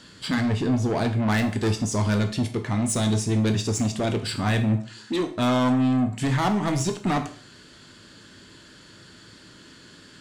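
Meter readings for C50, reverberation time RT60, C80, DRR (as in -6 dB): 11.5 dB, 0.45 s, 15.5 dB, 6.0 dB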